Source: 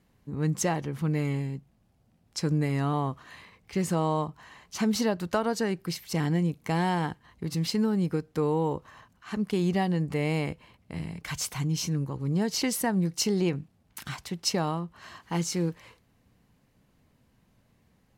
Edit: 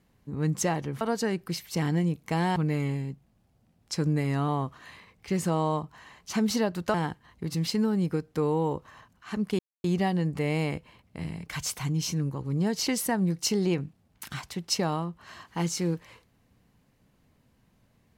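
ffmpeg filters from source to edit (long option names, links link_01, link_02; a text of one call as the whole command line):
ffmpeg -i in.wav -filter_complex "[0:a]asplit=5[link_01][link_02][link_03][link_04][link_05];[link_01]atrim=end=1.012[link_06];[link_02]atrim=start=5.388:end=6.942[link_07];[link_03]atrim=start=1.008:end=5.392[link_08];[link_04]atrim=start=6.938:end=9.59,asetpts=PTS-STARTPTS,afade=type=out:start_time=2.648:duration=0.004:curve=hsin,apad=pad_dur=0.25[link_09];[link_05]atrim=start=9.59,asetpts=PTS-STARTPTS,afade=type=in:duration=0.004:curve=hsin[link_10];[link_06][link_07]acrossfade=duration=0.004:curve1=hsin:curve2=hsin[link_11];[link_11][link_08]acrossfade=duration=0.004:curve1=hsin:curve2=hsin[link_12];[link_09][link_10]concat=n=2:v=0:a=1[link_13];[link_12][link_13]acrossfade=duration=0.004:curve1=hsin:curve2=hsin" out.wav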